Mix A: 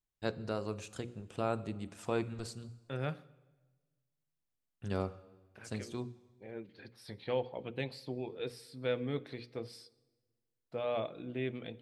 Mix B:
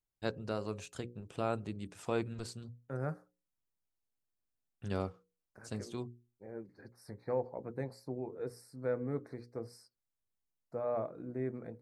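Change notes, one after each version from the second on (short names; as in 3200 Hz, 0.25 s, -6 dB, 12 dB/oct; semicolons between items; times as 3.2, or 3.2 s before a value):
second voice: add Butterworth band-stop 3100 Hz, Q 0.73; reverb: off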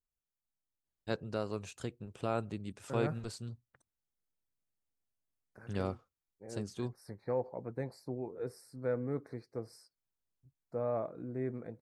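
first voice: entry +0.85 s; master: remove notches 60/120/180/240/300/360/420/480/540 Hz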